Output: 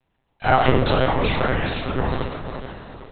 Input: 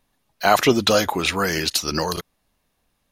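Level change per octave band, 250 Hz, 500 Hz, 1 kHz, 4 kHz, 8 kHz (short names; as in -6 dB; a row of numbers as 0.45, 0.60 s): -1.0 dB, -0.5 dB, +1.0 dB, -7.0 dB, under -40 dB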